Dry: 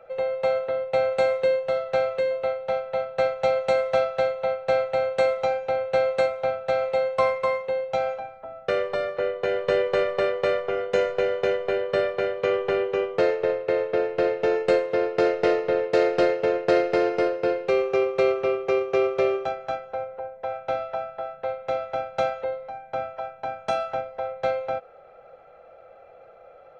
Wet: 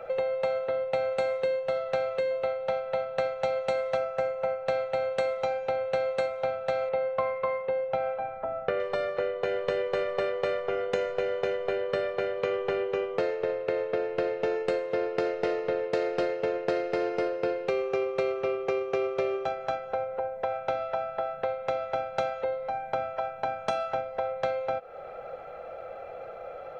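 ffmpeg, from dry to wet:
-filter_complex "[0:a]asettb=1/sr,asplit=3[a][b][c];[a]atrim=end=3.974[d];[b]atrim=start=3.97:end=4.66,asetpts=PTS-STARTPTS,afade=t=in:d=0.004:c=qsin,afade=t=out:st=0.686:d=0.004:c=qsin,equalizer=f=3.7k:t=o:w=0.63:g=-11.5[e];[c]atrim=start=4.656[f];[d][e]acrossfade=d=0.004:c1=hsin:c2=qsin[g];[g][f]acrossfade=d=0.004:c1=qsin:c2=hsin,asettb=1/sr,asplit=3[h][i][j];[h]atrim=end=6.894[k];[i]atrim=start=6.89:end=8.8,asetpts=PTS-STARTPTS,afade=t=in:d=0.004:c=qsin,afade=t=out:st=1.906:d=0.004:c=qsin,lowpass=2.4k[l];[j]atrim=start=8.796[m];[k][l]acrossfade=d=0.004:c1=hsin:c2=qsin[n];[n][m]acrossfade=d=0.004:c1=qsin:c2=hsin,acompressor=threshold=-37dB:ratio=4,volume=8.5dB"

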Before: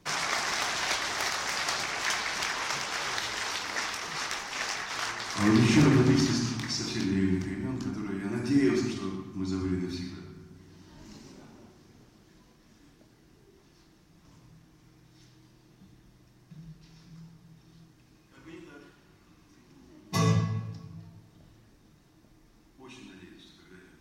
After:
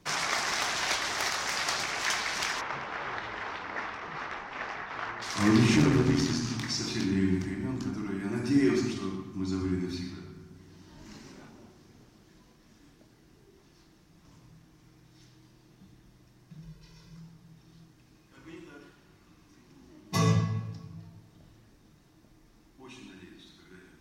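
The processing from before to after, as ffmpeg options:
-filter_complex "[0:a]asplit=3[a][b][c];[a]afade=t=out:st=2.6:d=0.02[d];[b]lowpass=1.8k,afade=t=in:st=2.6:d=0.02,afade=t=out:st=5.21:d=0.02[e];[c]afade=t=in:st=5.21:d=0.02[f];[d][e][f]amix=inputs=3:normalize=0,asettb=1/sr,asplit=3[g][h][i];[g]atrim=end=5.764[j];[h]atrim=start=5.76:end=6.5,asetpts=PTS-STARTPTS,afade=t=in:d=0.004:c=qsin,afade=t=out:st=0.736:d=0.004:c=qsin,tremolo=f=80:d=0.519[k];[i]atrim=start=6.496[l];[j][k]acrossfade=d=0.004:c1=hsin:c2=qsin[m];[m][l]acrossfade=d=0.004:c1=qsin:c2=hsin,asettb=1/sr,asplit=3[n][o][p];[n]atrim=end=11.064[q];[o]atrim=start=11.06:end=11.49,asetpts=PTS-STARTPTS,afade=t=in:d=0.004:c=qsin,afade=t=out:st=0.426:d=0.004:c=qsin,equalizer=f=1.7k:w=1:g=5.5[r];[p]atrim=start=11.486[s];[q][r]acrossfade=d=0.004:c1=hsin:c2=qsin[t];[t][s]acrossfade=d=0.004:c1=qsin:c2=hsin,asettb=1/sr,asplit=3[u][v][w];[u]atrim=end=16.624[x];[v]atrim=start=16.62:end=17.17,asetpts=PTS-STARTPTS,afade=t=in:d=0.004:c=qsin,afade=t=out:st=0.546:d=0.004:c=qsin,aecho=1:1:2:0.65,atrim=end_sample=24255[y];[w]atrim=start=17.166[z];[x][y]acrossfade=d=0.004:c1=hsin:c2=qsin[aa];[aa][z]acrossfade=d=0.004:c1=qsin:c2=hsin"

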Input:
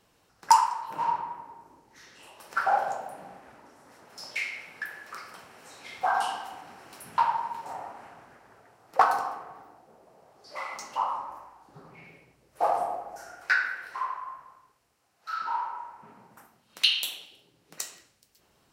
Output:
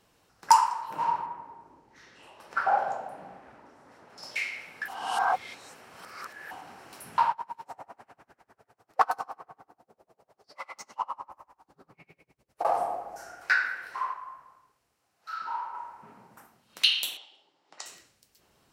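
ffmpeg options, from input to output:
-filter_complex "[0:a]asettb=1/sr,asplit=3[a][b][c];[a]atrim=end=1.264[d];[b]atrim=start=1.26:end=4.23,asetpts=PTS-STARTPTS,afade=t=in:d=0.004:c=qsin,afade=t=out:st=2.966:d=0.004:c=qsin,aemphasis=mode=reproduction:type=50kf[e];[c]atrim=start=4.226[f];[d][e]acrossfade=d=0.004:c1=hsin:c2=qsin[g];[g][f]acrossfade=d=0.004:c1=qsin:c2=hsin,asettb=1/sr,asplit=3[h][i][j];[h]atrim=end=7.314[k];[i]atrim=start=7.31:end=12.65,asetpts=PTS-STARTPTS,afade=t=in:d=0.004:c=qsin,afade=t=out:st=5.336:d=0.004:c=qsin,aeval=exprs='val(0)*pow(10,-30*(0.5-0.5*cos(2*PI*10*n/s))/20)':c=same[l];[j]atrim=start=12.646[m];[k][l]acrossfade=d=0.004:c1=hsin:c2=qsin[n];[n][m]acrossfade=d=0.004:c1=qsin:c2=hsin,asettb=1/sr,asplit=3[o][p][q];[o]atrim=end=17.174[r];[p]atrim=start=17.17:end=17.86,asetpts=PTS-STARTPTS,afade=t=in:d=0.004:c=qsin,afade=t=out:st=0.686:d=0.004:c=qsin,highpass=460,equalizer=f=460:t=q:w=4:g=-7,equalizer=f=850:t=q:w=4:g=6,equalizer=f=1.6k:t=q:w=4:g=-4,equalizer=f=2.5k:t=q:w=4:g=-6,equalizer=f=4.1k:t=q:w=4:g=-4,equalizer=f=6k:t=q:w=4:g=-6,lowpass=f=6.2k:w=0.5412,lowpass=f=6.2k:w=1.3066[s];[q]atrim=start=17.856[t];[r][s]acrossfade=d=0.004:c1=hsin:c2=qsin[u];[u][t]acrossfade=d=0.004:c1=qsin:c2=hsin,asplit=5[v][w][x][y][z];[v]atrim=end=4.882[aa];[w]atrim=start=4.878:end=6.512,asetpts=PTS-STARTPTS,areverse[ab];[x]atrim=start=6.508:end=14.132[ac];[y]atrim=start=14.128:end=15.742,asetpts=PTS-STARTPTS,volume=-3.5dB[ad];[z]atrim=start=15.738[ae];[aa][ab]acrossfade=d=0.004:c1=hsin:c2=hsin[af];[af][ac]acrossfade=d=0.004:c1=hsin:c2=hsin[ag];[ag][ad]acrossfade=d=0.004:c1=hsin:c2=hsin[ah];[ah][ae]acrossfade=d=0.004:c1=hsin:c2=hsin"

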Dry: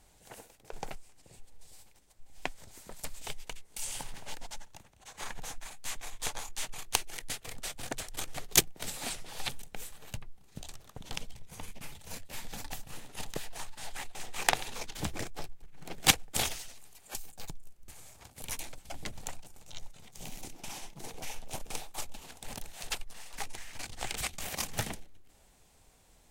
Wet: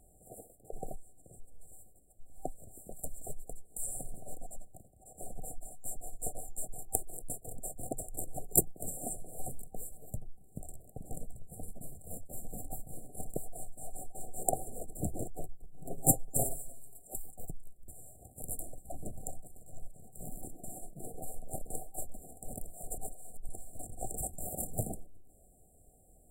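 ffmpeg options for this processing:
-filter_complex "[0:a]asettb=1/sr,asplit=3[a][b][c];[a]atrim=end=15.854[d];[b]atrim=start=15.85:end=17.02,asetpts=PTS-STARTPTS,afade=t=in:d=0.004:c=qsin,afade=t=out:st=1.166:d=0.004:c=qsin,aecho=1:1:7.4:0.72,atrim=end_sample=51597[e];[c]atrim=start=17.016[f];[d][e]acrossfade=d=0.004:c1=hsin:c2=qsin[g];[g][f]acrossfade=d=0.004:c1=qsin:c2=hsin,asplit=3[h][i][j];[h]atrim=end=22.982[k];[i]atrim=start=22.978:end=23.492,asetpts=PTS-STARTPTS,areverse[l];[j]atrim=start=23.488[m];[k][l]acrossfade=d=0.004:c1=hsin:c2=hsin[n];[n][m]acrossfade=d=0.004:c1=hsin:c2=hsin,afftfilt=real='re*(1-between(b*sr/4096,780,7200))':imag='im*(1-between(b*sr/4096,780,7200))':win_size=4096:overlap=0.75,volume=1.5dB"

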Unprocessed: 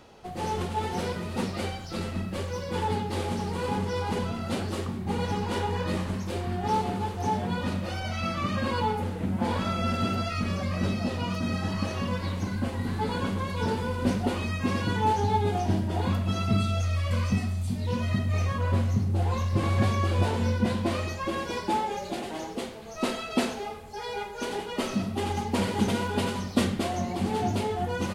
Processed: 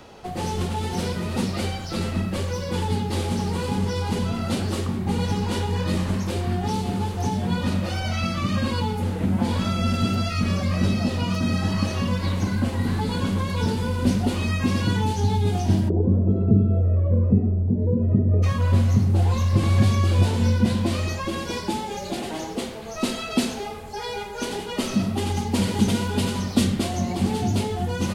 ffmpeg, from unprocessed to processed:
-filter_complex "[0:a]asplit=3[a][b][c];[a]afade=t=out:st=15.88:d=0.02[d];[b]lowpass=f=430:t=q:w=4.2,afade=t=in:st=15.88:d=0.02,afade=t=out:st=18.42:d=0.02[e];[c]afade=t=in:st=18.42:d=0.02[f];[d][e][f]amix=inputs=3:normalize=0,acrossover=split=290|3000[g][h][i];[h]acompressor=threshold=-37dB:ratio=6[j];[g][j][i]amix=inputs=3:normalize=0,volume=7dB"

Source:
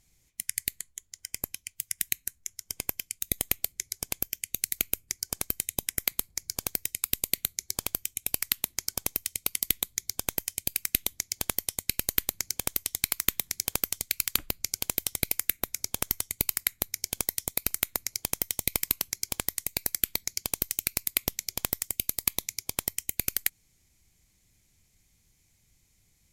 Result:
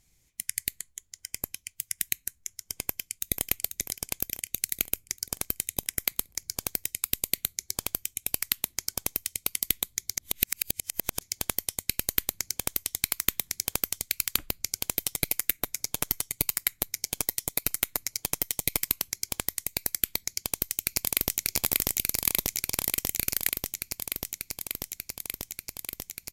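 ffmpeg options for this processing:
-filter_complex "[0:a]asplit=2[a][b];[b]afade=t=in:st=2.84:d=0.01,afade=t=out:st=3.43:d=0.01,aecho=0:1:490|980|1470|1960|2450|2940|3430:0.421697|0.231933|0.127563|0.0701598|0.0385879|0.0212233|0.0116728[c];[a][c]amix=inputs=2:normalize=0,asettb=1/sr,asplit=3[d][e][f];[d]atrim=end=14.984[g];[e]atrim=start=14.98:end=18.91,asetpts=PTS-STARTPTS,afade=t=in:d=0.004:c=qsin,afade=t=out:st=3.926:d=0.004:c=qsin,aecho=1:1:6.8:0.37,atrim=end_sample=173313[h];[f]atrim=start=18.906[i];[g][h]acrossfade=d=0.004:c1=hsin:c2=qsin[j];[j][i]acrossfade=d=0.004:c1=qsin:c2=hsin,asplit=2[k][l];[l]afade=t=in:st=20.28:d=0.01,afade=t=out:st=21.45:d=0.01,aecho=0:1:590|1180|1770|2360|2950|3540|4130|4720|5310|5900|6490|7080:0.944061|0.802452|0.682084|0.579771|0.492806|0.418885|0.356052|0.302644|0.257248|0.21866|0.185861|0.157982[m];[k][m]amix=inputs=2:normalize=0,asplit=3[n][o][p];[n]atrim=end=10.172[q];[o]atrim=start=10.168:end=11.212,asetpts=PTS-STARTPTS,areverse[r];[p]atrim=start=11.208[s];[q][r]acrossfade=d=0.004:c1=hsin:c2=hsin[t];[t][s]acrossfade=d=0.004:c1=hsin:c2=hsin"

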